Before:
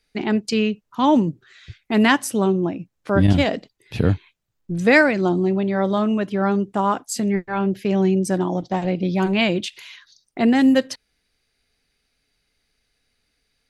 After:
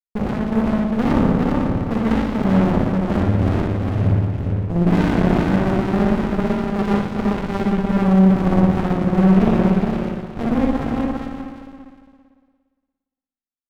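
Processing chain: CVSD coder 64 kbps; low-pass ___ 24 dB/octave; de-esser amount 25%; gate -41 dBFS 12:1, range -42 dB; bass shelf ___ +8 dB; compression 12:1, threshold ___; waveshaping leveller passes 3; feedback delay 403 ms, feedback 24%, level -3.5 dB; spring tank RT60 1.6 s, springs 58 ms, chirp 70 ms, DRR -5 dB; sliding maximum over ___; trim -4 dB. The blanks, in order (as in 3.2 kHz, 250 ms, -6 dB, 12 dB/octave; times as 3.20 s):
1.7 kHz, 87 Hz, -22 dBFS, 65 samples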